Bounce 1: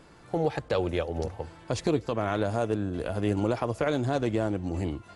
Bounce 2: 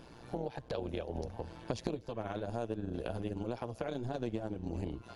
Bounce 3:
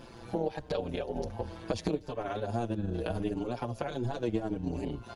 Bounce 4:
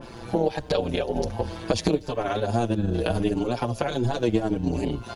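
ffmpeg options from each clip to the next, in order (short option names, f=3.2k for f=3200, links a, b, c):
-af "equalizer=f=1.25k:t=o:w=0.33:g=-7,equalizer=f=2k:t=o:w=0.33:g=-7,equalizer=f=8k:t=o:w=0.33:g=-10,acompressor=threshold=-35dB:ratio=10,tremolo=f=120:d=0.788,volume=4.5dB"
-filter_complex "[0:a]asplit=2[a][b];[b]adelay=5.4,afreqshift=-0.78[c];[a][c]amix=inputs=2:normalize=1,volume=8dB"
-af "adynamicequalizer=threshold=0.00355:dfrequency=2500:dqfactor=0.7:tfrequency=2500:tqfactor=0.7:attack=5:release=100:ratio=0.375:range=2:mode=boostabove:tftype=highshelf,volume=8.5dB"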